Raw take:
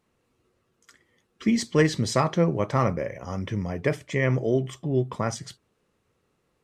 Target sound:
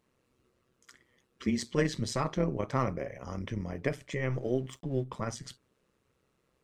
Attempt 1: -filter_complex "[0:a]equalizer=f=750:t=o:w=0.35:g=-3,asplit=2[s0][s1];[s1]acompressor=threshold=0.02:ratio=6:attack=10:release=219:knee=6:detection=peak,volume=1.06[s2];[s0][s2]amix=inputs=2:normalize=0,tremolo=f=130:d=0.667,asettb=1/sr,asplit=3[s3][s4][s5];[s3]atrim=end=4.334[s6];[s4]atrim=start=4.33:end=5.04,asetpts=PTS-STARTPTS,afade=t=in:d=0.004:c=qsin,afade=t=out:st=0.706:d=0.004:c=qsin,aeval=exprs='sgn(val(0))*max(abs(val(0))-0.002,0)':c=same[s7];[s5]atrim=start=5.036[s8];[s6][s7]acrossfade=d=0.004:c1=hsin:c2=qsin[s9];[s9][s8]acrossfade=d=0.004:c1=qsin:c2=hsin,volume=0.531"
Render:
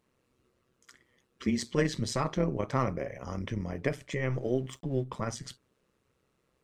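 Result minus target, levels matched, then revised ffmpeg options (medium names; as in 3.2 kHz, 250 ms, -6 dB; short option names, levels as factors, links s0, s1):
compression: peak gain reduction -6.5 dB
-filter_complex "[0:a]equalizer=f=750:t=o:w=0.35:g=-3,asplit=2[s0][s1];[s1]acompressor=threshold=0.00841:ratio=6:attack=10:release=219:knee=6:detection=peak,volume=1.06[s2];[s0][s2]amix=inputs=2:normalize=0,tremolo=f=130:d=0.667,asettb=1/sr,asplit=3[s3][s4][s5];[s3]atrim=end=4.334[s6];[s4]atrim=start=4.33:end=5.04,asetpts=PTS-STARTPTS,afade=t=in:d=0.004:c=qsin,afade=t=out:st=0.706:d=0.004:c=qsin,aeval=exprs='sgn(val(0))*max(abs(val(0))-0.002,0)':c=same[s7];[s5]atrim=start=5.036[s8];[s6][s7]acrossfade=d=0.004:c1=hsin:c2=qsin[s9];[s9][s8]acrossfade=d=0.004:c1=qsin:c2=hsin,volume=0.531"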